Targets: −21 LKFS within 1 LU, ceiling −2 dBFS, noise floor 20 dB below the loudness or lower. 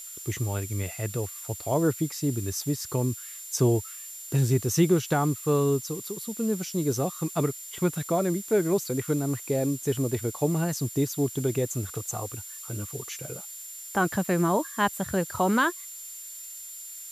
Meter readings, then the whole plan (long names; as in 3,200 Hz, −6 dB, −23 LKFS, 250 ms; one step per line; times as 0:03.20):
interfering tone 7,200 Hz; level of the tone −41 dBFS; background noise floor −41 dBFS; target noise floor −48 dBFS; integrated loudness −28.0 LKFS; sample peak −11.0 dBFS; target loudness −21.0 LKFS
→ notch filter 7,200 Hz, Q 30
broadband denoise 7 dB, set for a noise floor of −41 dBFS
level +7 dB